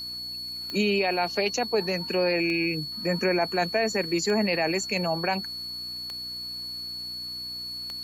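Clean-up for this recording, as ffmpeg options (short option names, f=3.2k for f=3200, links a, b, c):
-af "adeclick=t=4,bandreject=f=60.8:t=h:w=4,bandreject=f=121.6:t=h:w=4,bandreject=f=182.4:t=h:w=4,bandreject=f=243.2:t=h:w=4,bandreject=f=304:t=h:w=4,bandreject=f=4.4k:w=30"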